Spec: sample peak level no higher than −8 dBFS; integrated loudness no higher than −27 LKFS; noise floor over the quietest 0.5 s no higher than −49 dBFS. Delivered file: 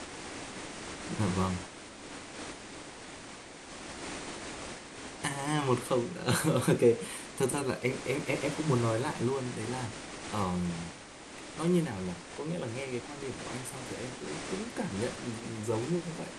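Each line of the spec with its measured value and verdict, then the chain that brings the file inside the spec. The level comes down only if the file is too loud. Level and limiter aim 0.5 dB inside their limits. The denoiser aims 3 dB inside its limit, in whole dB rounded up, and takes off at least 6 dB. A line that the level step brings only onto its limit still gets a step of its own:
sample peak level −13.0 dBFS: in spec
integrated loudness −33.5 LKFS: in spec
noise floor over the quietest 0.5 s −47 dBFS: out of spec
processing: broadband denoise 6 dB, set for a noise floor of −47 dBFS

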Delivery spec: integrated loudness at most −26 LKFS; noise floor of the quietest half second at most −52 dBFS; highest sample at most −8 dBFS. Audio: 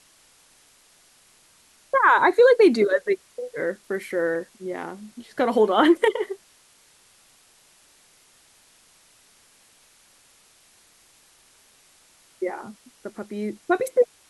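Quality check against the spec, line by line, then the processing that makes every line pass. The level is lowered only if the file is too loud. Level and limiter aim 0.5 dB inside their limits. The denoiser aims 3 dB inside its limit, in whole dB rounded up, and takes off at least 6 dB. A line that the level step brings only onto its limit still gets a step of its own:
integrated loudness −21.5 LKFS: out of spec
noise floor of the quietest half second −57 dBFS: in spec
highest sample −5.5 dBFS: out of spec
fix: level −5 dB

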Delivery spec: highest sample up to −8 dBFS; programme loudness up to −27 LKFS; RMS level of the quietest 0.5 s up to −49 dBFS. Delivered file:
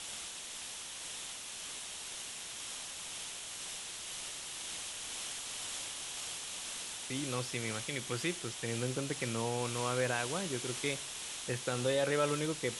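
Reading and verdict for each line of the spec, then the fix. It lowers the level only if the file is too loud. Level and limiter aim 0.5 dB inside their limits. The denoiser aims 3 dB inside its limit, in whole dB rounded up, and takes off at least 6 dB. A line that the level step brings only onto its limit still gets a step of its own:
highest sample −18.0 dBFS: in spec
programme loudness −37.0 LKFS: in spec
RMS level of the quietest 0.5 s −45 dBFS: out of spec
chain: broadband denoise 7 dB, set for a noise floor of −45 dBFS

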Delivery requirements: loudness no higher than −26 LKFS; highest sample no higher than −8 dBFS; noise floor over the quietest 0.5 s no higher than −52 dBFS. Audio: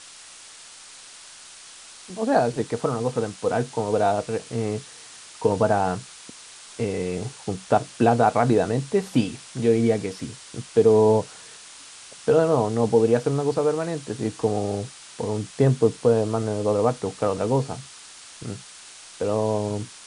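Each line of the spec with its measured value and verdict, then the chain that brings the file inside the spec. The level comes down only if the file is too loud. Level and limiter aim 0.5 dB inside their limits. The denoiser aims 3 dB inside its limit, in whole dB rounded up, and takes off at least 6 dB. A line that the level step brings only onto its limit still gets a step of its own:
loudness −23.0 LKFS: out of spec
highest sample −4.5 dBFS: out of spec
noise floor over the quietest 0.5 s −45 dBFS: out of spec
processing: broadband denoise 7 dB, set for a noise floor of −45 dBFS
level −3.5 dB
brickwall limiter −8.5 dBFS

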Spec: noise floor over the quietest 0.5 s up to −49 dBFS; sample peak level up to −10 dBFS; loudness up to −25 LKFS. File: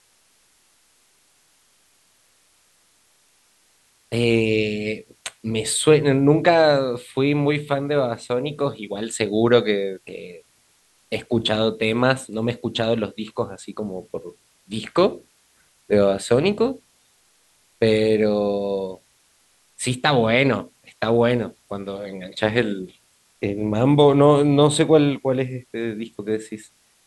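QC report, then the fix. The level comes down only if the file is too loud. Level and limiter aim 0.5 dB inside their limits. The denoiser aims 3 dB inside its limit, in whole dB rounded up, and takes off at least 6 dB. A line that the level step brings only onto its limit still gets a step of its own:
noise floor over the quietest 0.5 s −61 dBFS: in spec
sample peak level −3.0 dBFS: out of spec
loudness −20.5 LKFS: out of spec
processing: level −5 dB
brickwall limiter −10.5 dBFS

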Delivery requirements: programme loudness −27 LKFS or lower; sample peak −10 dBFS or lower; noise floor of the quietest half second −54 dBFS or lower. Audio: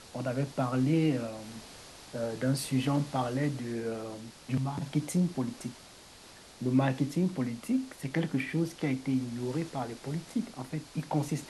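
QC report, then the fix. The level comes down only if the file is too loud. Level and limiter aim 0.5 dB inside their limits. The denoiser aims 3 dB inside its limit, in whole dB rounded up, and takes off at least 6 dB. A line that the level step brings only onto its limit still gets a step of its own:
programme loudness −32.0 LKFS: in spec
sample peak −15.0 dBFS: in spec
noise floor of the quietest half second −52 dBFS: out of spec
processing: broadband denoise 6 dB, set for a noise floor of −52 dBFS

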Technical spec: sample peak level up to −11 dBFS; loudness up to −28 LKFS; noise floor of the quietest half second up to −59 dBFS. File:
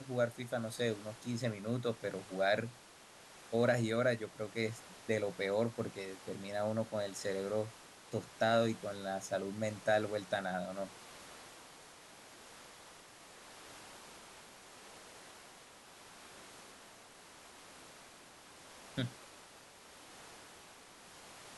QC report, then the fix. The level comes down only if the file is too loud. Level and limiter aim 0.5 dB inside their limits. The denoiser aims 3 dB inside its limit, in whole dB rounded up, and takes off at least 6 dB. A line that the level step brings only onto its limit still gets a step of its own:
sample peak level −18.0 dBFS: in spec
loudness −37.0 LKFS: in spec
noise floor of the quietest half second −58 dBFS: out of spec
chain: broadband denoise 6 dB, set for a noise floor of −58 dBFS

